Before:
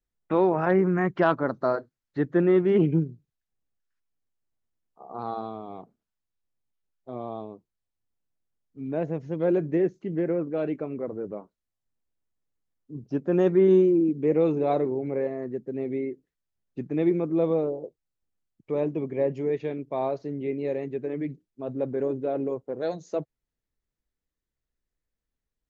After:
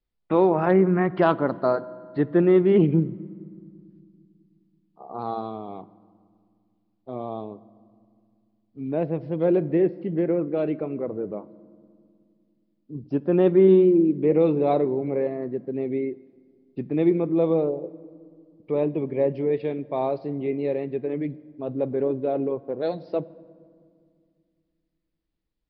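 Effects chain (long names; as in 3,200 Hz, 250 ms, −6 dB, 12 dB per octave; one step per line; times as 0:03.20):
on a send at −18 dB: convolution reverb RT60 2.2 s, pre-delay 5 ms
on the sum: downsampling to 11,025 Hz
parametric band 1,600 Hz −4.5 dB 0.59 octaves
level +3 dB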